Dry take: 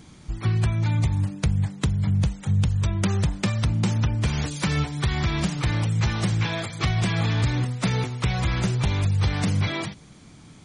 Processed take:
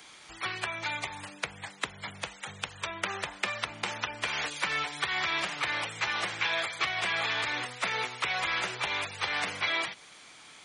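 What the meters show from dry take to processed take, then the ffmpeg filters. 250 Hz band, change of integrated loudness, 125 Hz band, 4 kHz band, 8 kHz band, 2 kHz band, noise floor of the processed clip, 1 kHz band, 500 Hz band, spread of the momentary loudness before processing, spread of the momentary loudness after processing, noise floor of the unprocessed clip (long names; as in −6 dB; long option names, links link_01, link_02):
−20.0 dB, −7.0 dB, −28.5 dB, +0.5 dB, −5.0 dB, +3.5 dB, −52 dBFS, 0.0 dB, −5.5 dB, 3 LU, 10 LU, −48 dBFS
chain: -filter_complex "[0:a]crystalizer=i=9.5:c=0,acrossover=split=110|260|2800[link_01][link_02][link_03][link_04];[link_01]acompressor=threshold=-35dB:ratio=4[link_05];[link_02]acompressor=threshold=-29dB:ratio=4[link_06];[link_03]acompressor=threshold=-24dB:ratio=4[link_07];[link_04]acompressor=threshold=-27dB:ratio=4[link_08];[link_05][link_06][link_07][link_08]amix=inputs=4:normalize=0,acrossover=split=420 3300:gain=0.0794 1 0.141[link_09][link_10][link_11];[link_09][link_10][link_11]amix=inputs=3:normalize=0,volume=-2.5dB"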